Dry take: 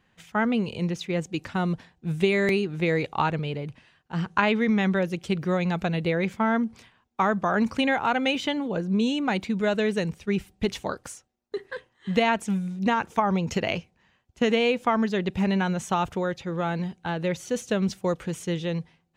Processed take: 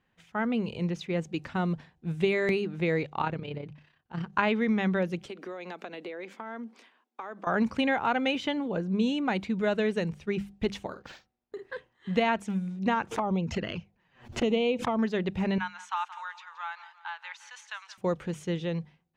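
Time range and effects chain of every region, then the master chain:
0:03.03–0:04.33: low-pass filter 7,600 Hz + amplitude modulation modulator 33 Hz, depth 45%
0:05.26–0:07.47: Butterworth high-pass 250 Hz + downward compressor 12 to 1, threshold −32 dBFS
0:10.86–0:11.63: double-tracking delay 49 ms −12 dB + downward compressor 2 to 1, threshold −36 dBFS + linearly interpolated sample-rate reduction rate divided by 4×
0:13.11–0:14.99: high-shelf EQ 7,100 Hz −7 dB + flanger swept by the level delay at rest 9.4 ms, full sweep at −20 dBFS + background raised ahead of every attack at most 140 dB per second
0:15.58–0:17.98: Chebyshev high-pass filter 890 Hz, order 5 + high-frequency loss of the air 52 metres + repeating echo 174 ms, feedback 46%, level −15 dB
whole clip: high-shelf EQ 6,000 Hz −10.5 dB; mains-hum notches 50/100/150/200 Hz; automatic gain control gain up to 4.5 dB; level −7 dB

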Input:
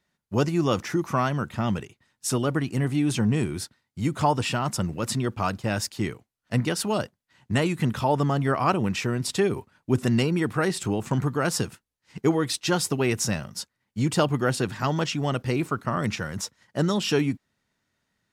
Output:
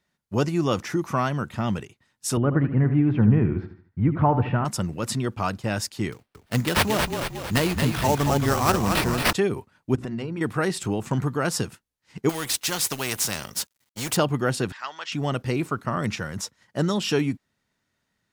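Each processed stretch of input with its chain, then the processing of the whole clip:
0:02.37–0:04.65: low-pass filter 2,000 Hz 24 dB per octave + low-shelf EQ 180 Hz +9.5 dB + repeating echo 77 ms, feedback 39%, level −11 dB
0:06.12–0:09.33: parametric band 7,200 Hz +13 dB 1.5 octaves + sample-rate reduction 6,900 Hz, jitter 20% + echo with shifted repeats 226 ms, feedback 55%, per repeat −32 Hz, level −5.5 dB
0:09.95–0:10.41: low-pass filter 1,900 Hz 6 dB per octave + mains-hum notches 60/120/180/240/300/360 Hz + downward compressor, threshold −27 dBFS
0:12.29–0:14.17: mu-law and A-law mismatch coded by A + high-shelf EQ 3,800 Hz +8 dB + every bin compressed towards the loudest bin 2 to 1
0:14.72–0:15.12: high-pass filter 1,300 Hz + high-frequency loss of the air 100 metres
whole clip: no processing

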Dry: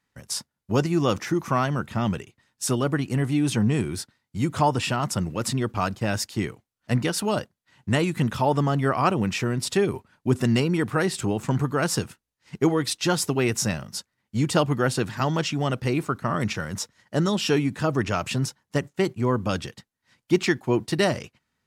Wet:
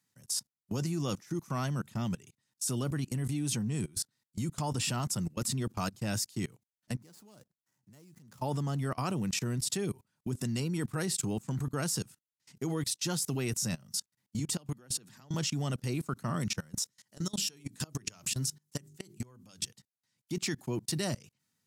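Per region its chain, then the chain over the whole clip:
0:06.95–0:08.42: running median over 15 samples + bass and treble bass −3 dB, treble +4 dB + downward compressor 1.5 to 1, threshold −58 dBFS
0:14.39–0:15.34: high-pass filter 130 Hz 24 dB per octave + downward compressor 5 to 1, threshold −26 dBFS
0:16.82–0:19.68: high-shelf EQ 2,500 Hz +7.5 dB + mains-hum notches 50/100/150/200/250/300/350/400 Hz + downward compressor 8 to 1, threshold −26 dBFS
whole clip: high-pass filter 110 Hz 24 dB per octave; bass and treble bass +9 dB, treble +15 dB; output level in coarse steps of 24 dB; level −8 dB

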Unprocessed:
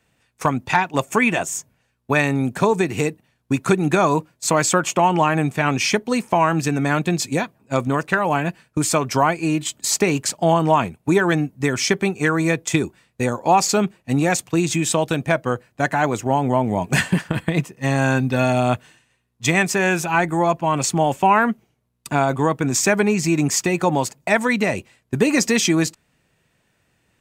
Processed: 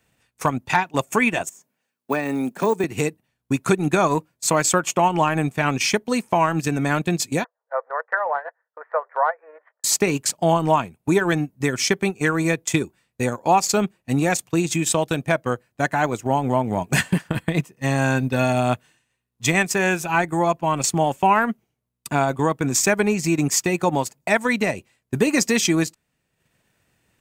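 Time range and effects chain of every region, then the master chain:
0:01.49–0:02.84: de-essing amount 80% + high-pass filter 190 Hz 24 dB per octave + log-companded quantiser 8 bits
0:07.44–0:09.84: mu-law and A-law mismatch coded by A + Chebyshev band-pass filter 470–1,900 Hz, order 5
whole clip: high-shelf EQ 10,000 Hz +7 dB; transient designer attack 0 dB, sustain −8 dB; level −1.5 dB

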